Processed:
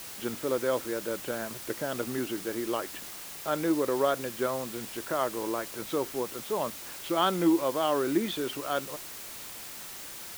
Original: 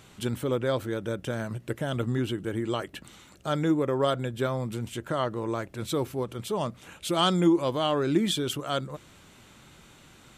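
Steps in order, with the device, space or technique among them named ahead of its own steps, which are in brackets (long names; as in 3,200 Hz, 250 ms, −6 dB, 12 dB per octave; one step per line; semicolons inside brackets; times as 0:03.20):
wax cylinder (band-pass filter 290–2,400 Hz; tape wow and flutter; white noise bed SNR 11 dB)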